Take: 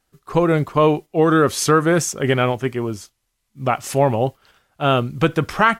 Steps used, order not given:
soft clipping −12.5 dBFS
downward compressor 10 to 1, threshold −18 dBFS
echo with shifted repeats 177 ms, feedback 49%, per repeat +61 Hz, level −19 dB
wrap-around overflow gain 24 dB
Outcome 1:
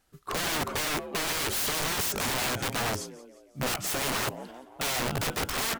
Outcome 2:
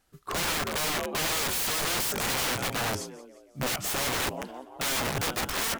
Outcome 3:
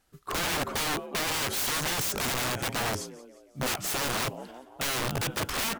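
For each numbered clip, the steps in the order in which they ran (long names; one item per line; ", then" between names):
soft clipping, then downward compressor, then echo with shifted repeats, then wrap-around overflow
echo with shifted repeats, then soft clipping, then wrap-around overflow, then downward compressor
downward compressor, then echo with shifted repeats, then wrap-around overflow, then soft clipping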